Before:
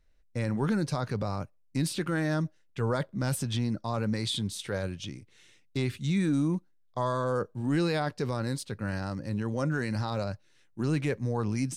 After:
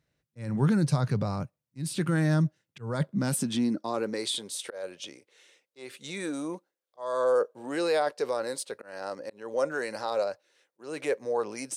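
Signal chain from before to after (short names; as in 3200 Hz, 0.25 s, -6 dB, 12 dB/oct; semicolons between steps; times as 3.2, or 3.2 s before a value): dynamic EQ 9200 Hz, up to +6 dB, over -56 dBFS, Q 1.4; auto swell 0.259 s; high-pass sweep 130 Hz -> 510 Hz, 2.83–4.44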